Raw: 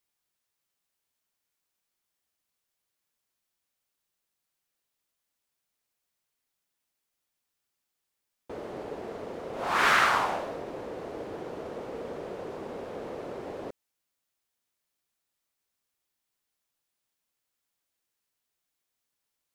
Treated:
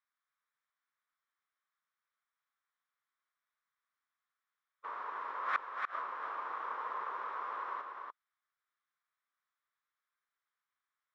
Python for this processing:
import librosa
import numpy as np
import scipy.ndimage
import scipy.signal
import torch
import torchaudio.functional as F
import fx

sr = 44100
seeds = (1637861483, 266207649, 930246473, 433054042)

p1 = fx.lower_of_two(x, sr, delay_ms=0.55)
p2 = fx.fold_sine(p1, sr, drive_db=9, ceiling_db=-10.5)
p3 = p1 + F.gain(torch.from_numpy(p2), -11.0).numpy()
p4 = fx.stretch_vocoder(p3, sr, factor=0.57)
p5 = fx.ladder_bandpass(p4, sr, hz=1200.0, resonance_pct=65)
p6 = fx.gate_flip(p5, sr, shuts_db=-25.0, range_db=-33)
p7 = p6 + fx.echo_single(p6, sr, ms=290, db=-4.5, dry=0)
y = F.gain(torch.from_numpy(p7), 6.0).numpy()